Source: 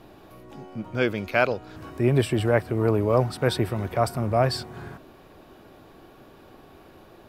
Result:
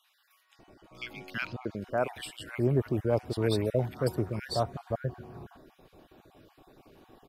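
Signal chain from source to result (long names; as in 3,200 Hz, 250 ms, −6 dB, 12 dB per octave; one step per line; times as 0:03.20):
time-frequency cells dropped at random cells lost 26%
multiband delay without the direct sound highs, lows 590 ms, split 1,400 Hz
level −5.5 dB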